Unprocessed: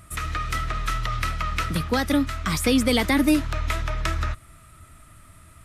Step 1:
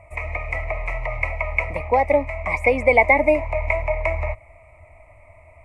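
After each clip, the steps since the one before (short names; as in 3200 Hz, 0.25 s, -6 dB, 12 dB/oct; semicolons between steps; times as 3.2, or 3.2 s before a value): EQ curve 100 Hz 0 dB, 160 Hz -15 dB, 380 Hz -5 dB, 600 Hz +15 dB, 1000 Hz +10 dB, 1500 Hz -27 dB, 2200 Hz +15 dB, 3300 Hz -25 dB, 8200 Hz -18 dB, 13000 Hz -29 dB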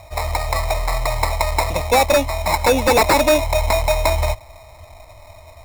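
sample-rate reducer 3100 Hz, jitter 0%; sine folder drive 10 dB, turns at -1.5 dBFS; gain -7.5 dB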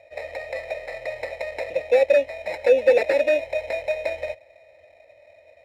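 vowel filter e; gain +4 dB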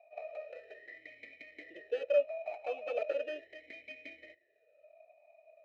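tracing distortion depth 0.072 ms; notch comb 530 Hz; vowel sweep a-i 0.38 Hz; gain -2.5 dB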